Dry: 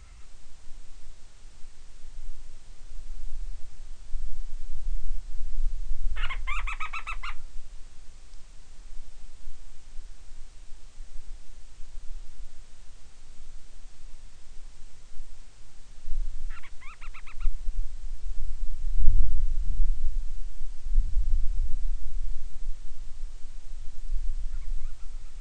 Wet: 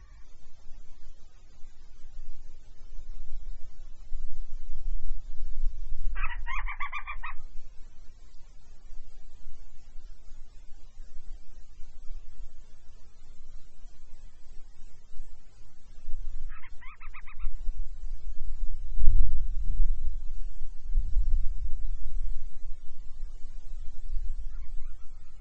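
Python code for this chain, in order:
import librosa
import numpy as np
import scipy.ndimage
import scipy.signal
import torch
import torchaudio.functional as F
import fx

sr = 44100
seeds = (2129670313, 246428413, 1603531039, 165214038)

y = fx.pitch_glide(x, sr, semitones=-2.5, runs='ending unshifted')
y = fx.spec_topn(y, sr, count=64)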